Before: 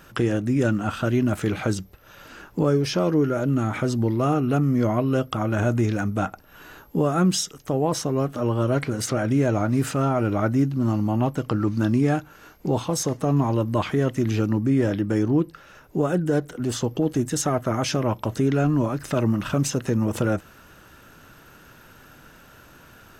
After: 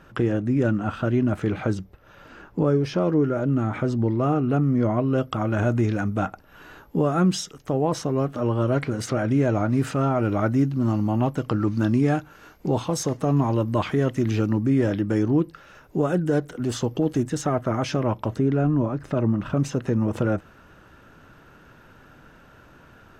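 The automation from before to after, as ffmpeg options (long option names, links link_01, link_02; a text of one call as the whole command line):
ffmpeg -i in.wav -af "asetnsamples=nb_out_samples=441:pad=0,asendcmd='5.18 lowpass f 3600;10.23 lowpass f 6300;17.23 lowpass f 2600;18.37 lowpass f 1000;19.57 lowpass f 1900',lowpass=frequency=1700:poles=1" out.wav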